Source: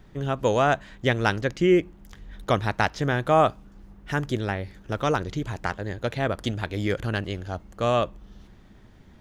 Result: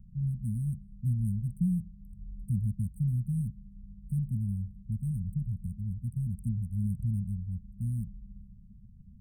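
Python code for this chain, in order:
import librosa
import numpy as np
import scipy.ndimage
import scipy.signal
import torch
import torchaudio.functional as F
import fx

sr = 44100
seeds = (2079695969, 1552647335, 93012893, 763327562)

y = fx.wiener(x, sr, points=9)
y = fx.brickwall_bandstop(y, sr, low_hz=230.0, high_hz=8100.0)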